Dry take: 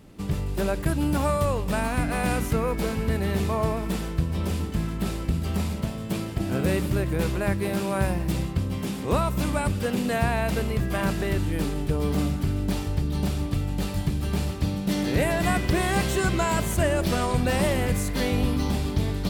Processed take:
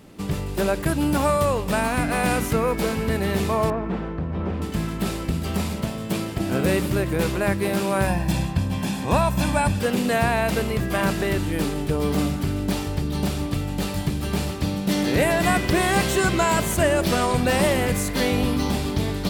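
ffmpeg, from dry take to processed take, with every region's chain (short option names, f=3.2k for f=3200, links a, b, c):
-filter_complex "[0:a]asettb=1/sr,asplit=3[a][b][c];[a]atrim=end=3.704[d];[b]atrim=start=3.7:end=4.62,asetpts=PTS-STARTPTS,afade=t=in:d=0.004:c=qsin,afade=t=out:st=0.916:d=0.004:c=qsin,asoftclip=type=hard:threshold=-22.5dB,lowpass=1.6k[e];[c]atrim=start=4.616[f];[d][e]acrossfade=d=0.004:c1=hsin:c2=qsin[g];[g][f]acrossfade=d=0.004:c1=qsin:c2=hsin,asettb=1/sr,asplit=3[h][i][j];[h]atrim=end=8.074[k];[i]atrim=start=8.07:end=9.81,asetpts=PTS-STARTPTS,afade=t=in:d=0.004:c=qsin,afade=t=out:st=1.736:d=0.004:c=qsin,highshelf=f=12k:g=-6,aecho=1:1:1.2:0.59,atrim=end_sample=76734[l];[j]atrim=start=9.806[m];[k][l]acrossfade=d=0.004:c1=hsin:c2=qsin[n];[n][m]acrossfade=d=0.004:c1=qsin:c2=hsin,lowshelf=f=120:g=-9,acontrast=26"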